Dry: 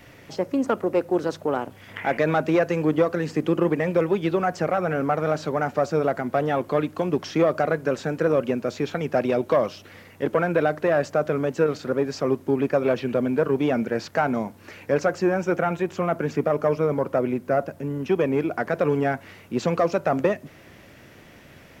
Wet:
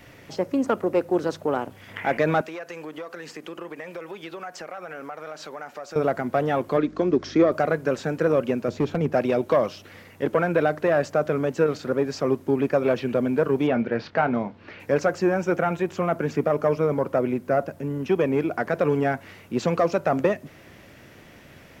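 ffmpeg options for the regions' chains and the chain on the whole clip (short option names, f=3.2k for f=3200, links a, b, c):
-filter_complex "[0:a]asettb=1/sr,asplit=3[a][b][c];[a]atrim=end=2.414[d];[b]atrim=start=2.41:end=5.96,asetpts=PTS-STARTPTS,afade=t=in:d=0.004:c=qsin,afade=t=out:st=3.546:d=0.004:c=qsin,highpass=f=1k:p=1,acompressor=threshold=-34dB:ratio=3:attack=3.2:release=140:knee=1:detection=peak[e];[c]atrim=start=5.956[f];[d][e]acrossfade=d=0.004:c1=hsin:c2=qsin[g];[g][f]acrossfade=d=0.004:c1=qsin:c2=hsin,asettb=1/sr,asplit=3[h][i][j];[h]atrim=end=6.774[k];[i]atrim=start=6.77:end=7.52,asetpts=PTS-STARTPTS,afade=t=in:d=0.004:c=qsin,afade=t=out:st=0.746:d=0.004:c=qsin,aeval=exprs='val(0)+0.00891*(sin(2*PI*50*n/s)+sin(2*PI*2*50*n/s)/2+sin(2*PI*3*50*n/s)/3+sin(2*PI*4*50*n/s)/4+sin(2*PI*5*50*n/s)/5)':c=same,highpass=100,equalizer=f=150:t=q:w=4:g=-4,equalizer=f=250:t=q:w=4:g=4,equalizer=f=360:t=q:w=4:g=6,equalizer=f=850:t=q:w=4:g=-7,equalizer=f=2.8k:t=q:w=4:g=-7,lowpass=f=6.3k:w=0.5412,lowpass=f=6.3k:w=1.3066[l];[j]atrim=start=7.516[m];[k][l]acrossfade=d=0.004:c1=hsin:c2=qsin[n];[n][m]acrossfade=d=0.004:c1=qsin:c2=hsin,asettb=1/sr,asplit=3[o][p][q];[o]atrim=end=8.684[r];[p]atrim=start=8.68:end=9.13,asetpts=PTS-STARTPTS,afade=t=in:d=0.004:c=qsin,afade=t=out:st=0.446:d=0.004:c=qsin,tiltshelf=f=760:g=6,asoftclip=type=hard:threshold=-15.5dB[s];[q]atrim=start=9.126[t];[r][s]acrossfade=d=0.004:c1=hsin:c2=qsin[u];[u][t]acrossfade=d=0.004:c1=qsin:c2=hsin,asettb=1/sr,asplit=3[v][w][x];[v]atrim=end=13.674[y];[w]atrim=start=13.67:end=14.8,asetpts=PTS-STARTPTS,afade=t=in:d=0.004:c=qsin,afade=t=out:st=1.126:d=0.004:c=qsin,lowpass=f=4.2k:w=0.5412,lowpass=f=4.2k:w=1.3066,asplit=2[z][aa];[aa]adelay=25,volume=-12.5dB[ab];[z][ab]amix=inputs=2:normalize=0,atrim=end_sample=49833[ac];[x]atrim=start=14.796[ad];[y][ac]acrossfade=d=0.004:c1=hsin:c2=qsin[ae];[ae][ad]acrossfade=d=0.004:c1=qsin:c2=hsin"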